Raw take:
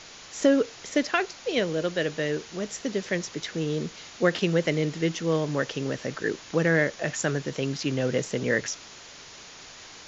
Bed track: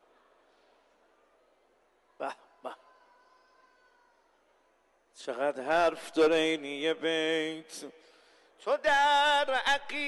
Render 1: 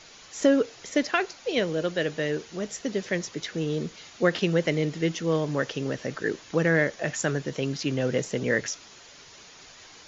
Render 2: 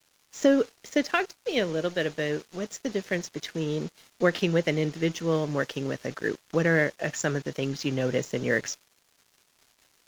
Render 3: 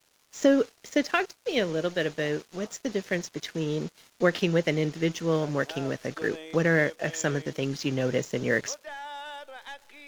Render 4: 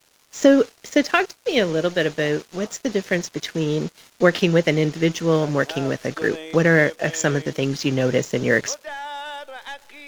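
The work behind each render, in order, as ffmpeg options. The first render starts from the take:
-af "afftdn=nr=6:nf=-46"
-af "aeval=exprs='sgn(val(0))*max(abs(val(0))-0.00596,0)':c=same"
-filter_complex "[1:a]volume=-15dB[a];[0:a][a]amix=inputs=2:normalize=0"
-af "volume=7dB"

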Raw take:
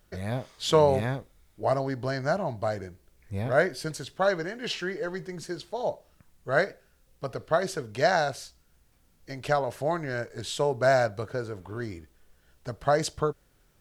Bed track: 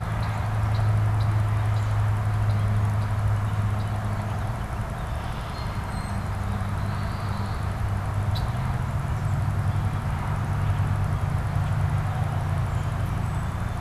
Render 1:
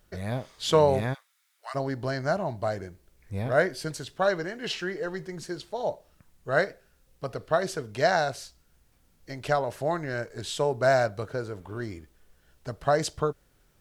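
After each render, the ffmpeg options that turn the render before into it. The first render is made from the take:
-filter_complex "[0:a]asplit=3[a][b][c];[a]afade=t=out:st=1.13:d=0.02[d];[b]highpass=f=1.2k:w=0.5412,highpass=f=1.2k:w=1.3066,afade=t=in:st=1.13:d=0.02,afade=t=out:st=1.74:d=0.02[e];[c]afade=t=in:st=1.74:d=0.02[f];[d][e][f]amix=inputs=3:normalize=0"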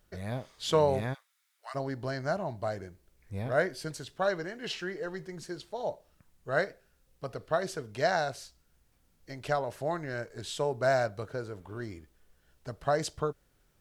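-af "volume=-4.5dB"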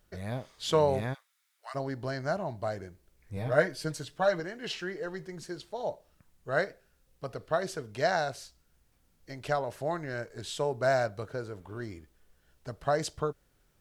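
-filter_complex "[0:a]asettb=1/sr,asplit=3[a][b][c];[a]atrim=end=3.364[d];[b]atrim=start=3.36:end=4.4,asetpts=PTS-STARTPTS,afade=t=in:d=0.004:c=qsin,afade=t=out:st=1.036:d=0.004:c=qsin,aecho=1:1:6.5:0.65,atrim=end_sample=45864[e];[c]atrim=start=4.396[f];[d][e]acrossfade=d=0.004:c1=hsin:c2=qsin[g];[g][f]acrossfade=d=0.004:c1=qsin:c2=hsin"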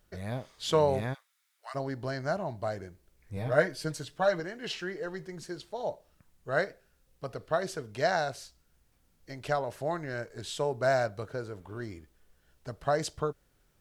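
-af anull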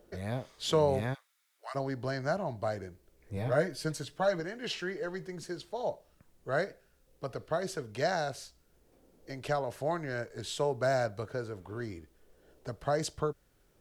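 -filter_complex "[0:a]acrossover=split=380|460|4600[a][b][c][d];[b]acompressor=mode=upward:threshold=-44dB:ratio=2.5[e];[c]alimiter=limit=-23.5dB:level=0:latency=1:release=241[f];[a][e][f][d]amix=inputs=4:normalize=0"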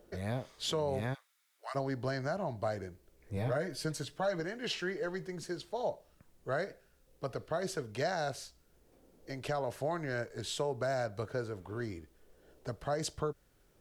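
-af "alimiter=limit=-24dB:level=0:latency=1:release=130"

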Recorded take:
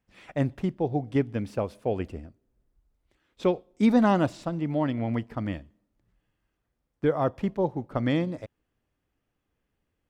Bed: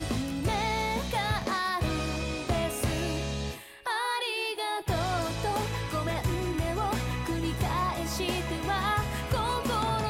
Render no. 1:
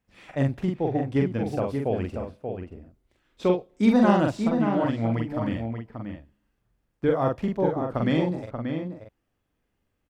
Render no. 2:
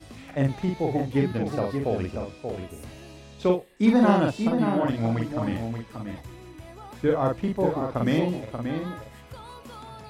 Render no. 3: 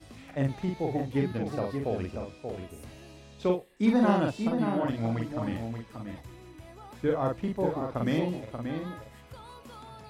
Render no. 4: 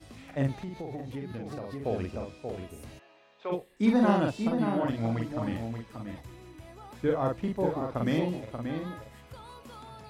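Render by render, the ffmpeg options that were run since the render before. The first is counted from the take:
-filter_complex "[0:a]asplit=2[a][b];[b]adelay=44,volume=-3dB[c];[a][c]amix=inputs=2:normalize=0,asplit=2[d][e];[e]adelay=583.1,volume=-6dB,highshelf=f=4k:g=-13.1[f];[d][f]amix=inputs=2:normalize=0"
-filter_complex "[1:a]volume=-14dB[a];[0:a][a]amix=inputs=2:normalize=0"
-af "volume=-4.5dB"
-filter_complex "[0:a]asettb=1/sr,asplit=3[a][b][c];[a]atrim=end=0.534[d];[b]atrim=start=0.53:end=1.85,asetpts=PTS-STARTPTS,afade=t=in:d=0.004:c=qsin,afade=t=out:st=1.316:d=0.004:c=qsin,acompressor=threshold=-34dB:ratio=6:attack=3.2:release=140:knee=1:detection=peak[e];[c]atrim=start=1.846[f];[d][e]acrossfade=d=0.004:c1=hsin:c2=qsin[g];[g][f]acrossfade=d=0.004:c1=qsin:c2=hsin,asplit=3[h][i][j];[h]afade=t=out:st=2.98:d=0.02[k];[i]highpass=720,lowpass=2.2k,afade=t=in:st=2.98:d=0.02,afade=t=out:st=3.51:d=0.02[l];[j]afade=t=in:st=3.51:d=0.02[m];[k][l][m]amix=inputs=3:normalize=0"

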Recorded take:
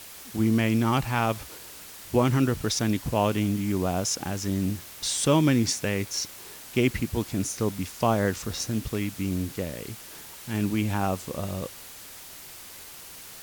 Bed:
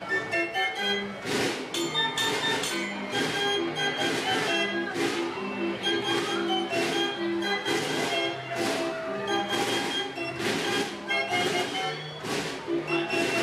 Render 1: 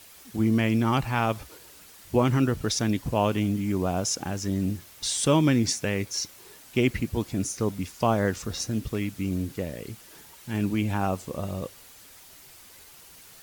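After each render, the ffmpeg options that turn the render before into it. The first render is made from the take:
-af "afftdn=nr=7:nf=-44"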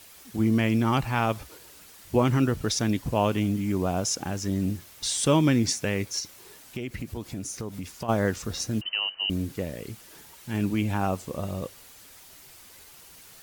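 -filter_complex "[0:a]asplit=3[a][b][c];[a]afade=t=out:st=6.19:d=0.02[d];[b]acompressor=threshold=-30dB:ratio=6:attack=3.2:release=140:knee=1:detection=peak,afade=t=in:st=6.19:d=0.02,afade=t=out:st=8.08:d=0.02[e];[c]afade=t=in:st=8.08:d=0.02[f];[d][e][f]amix=inputs=3:normalize=0,asettb=1/sr,asplit=3[g][h][i];[g]atrim=end=8.814[j];[h]atrim=start=8.81:end=9.3,asetpts=PTS-STARTPTS,afade=t=in:d=0.004:c=qsin,afade=t=out:st=0.486:d=0.004:c=qsin,lowpass=f=2.6k:t=q:w=0.5098,lowpass=f=2.6k:t=q:w=0.6013,lowpass=f=2.6k:t=q:w=0.9,lowpass=f=2.6k:t=q:w=2.563,afreqshift=-3100[k];[i]atrim=start=9.296[l];[j][k]acrossfade=d=0.004:c1=hsin:c2=qsin[m];[m][l]acrossfade=d=0.004:c1=qsin:c2=hsin"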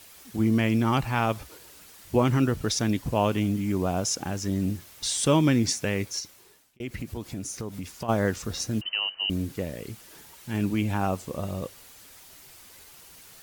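-filter_complex "[0:a]asplit=2[a][b];[a]atrim=end=6.8,asetpts=PTS-STARTPTS,afade=t=out:st=6.05:d=0.75[c];[b]atrim=start=6.8,asetpts=PTS-STARTPTS,afade=t=in:d=0.004:c=hsin[d];[c][d]concat=n=2:v=0:a=1"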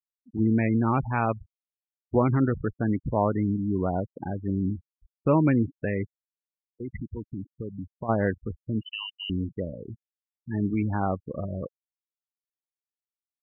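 -af "lowpass=f=2.4k:w=0.5412,lowpass=f=2.4k:w=1.3066,afftfilt=real='re*gte(hypot(re,im),0.0447)':imag='im*gte(hypot(re,im),0.0447)':win_size=1024:overlap=0.75"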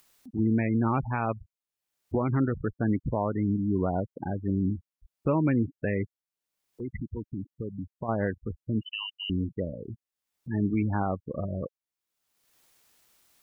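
-af "acompressor=mode=upward:threshold=-39dB:ratio=2.5,alimiter=limit=-16.5dB:level=0:latency=1:release=299"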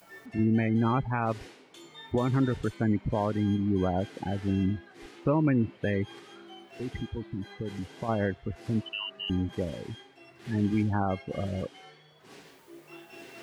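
-filter_complex "[1:a]volume=-21dB[a];[0:a][a]amix=inputs=2:normalize=0"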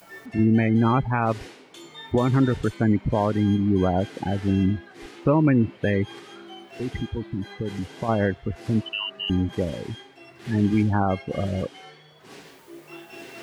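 -af "volume=6dB"

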